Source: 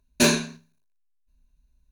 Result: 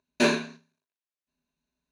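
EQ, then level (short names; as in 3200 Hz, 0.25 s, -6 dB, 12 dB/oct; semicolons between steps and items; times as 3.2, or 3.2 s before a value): dynamic EQ 6000 Hz, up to -7 dB, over -37 dBFS, Q 1; HPF 250 Hz 12 dB/oct; air absorption 79 m; 0.0 dB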